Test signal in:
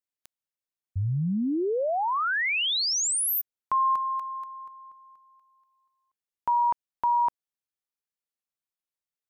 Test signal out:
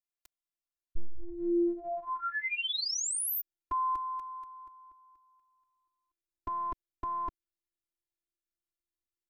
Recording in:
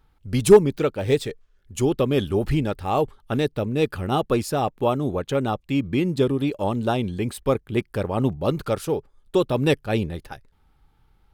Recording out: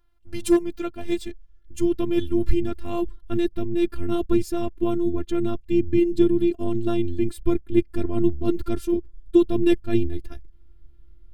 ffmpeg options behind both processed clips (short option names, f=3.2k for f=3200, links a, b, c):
-af "afftfilt=real='hypot(re,im)*cos(PI*b)':imag='0':win_size=512:overlap=0.75,asubboost=boost=10.5:cutoff=240,volume=-3dB"